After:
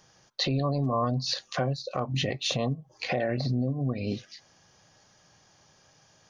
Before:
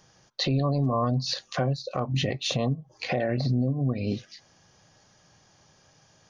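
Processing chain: bass shelf 370 Hz -3.5 dB

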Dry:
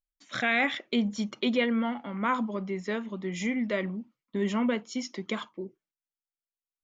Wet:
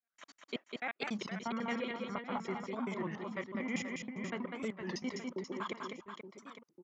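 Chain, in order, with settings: slices played last to first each 80 ms, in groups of 6; high-pass 140 Hz; peaking EQ 1.1 kHz +10 dB 1.5 oct; band-stop 3.6 kHz, Q 14; reverse; compression 6:1, threshold -33 dBFS, peak gain reduction 17 dB; reverse; trance gate "..xxxxx..x.xxx" 165 bpm -60 dB; on a send: reverse bouncing-ball echo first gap 200 ms, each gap 1.4×, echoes 5; on the sum: warped record 33 1/3 rpm, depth 160 cents; trim -2 dB

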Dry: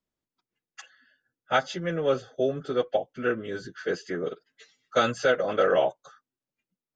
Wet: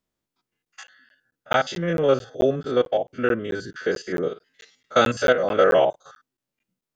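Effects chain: spectrogram pixelated in time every 50 ms; crackling interface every 0.22 s, samples 512, zero, from 0.65 s; trim +6.5 dB

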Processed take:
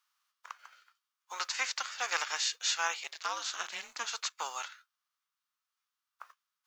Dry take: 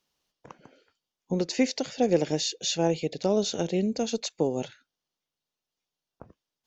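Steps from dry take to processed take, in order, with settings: formants flattened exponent 0.6; ladder high-pass 1.1 kHz, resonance 65%; 3.03–4.04 s: ring modulator 69 Hz -> 240 Hz; trim +8.5 dB

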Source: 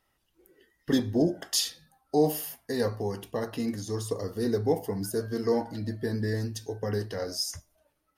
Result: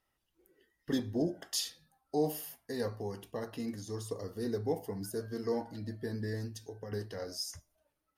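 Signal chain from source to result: 6.48–6.92 s: compression, threshold -33 dBFS, peak gain reduction 6 dB; trim -7.5 dB

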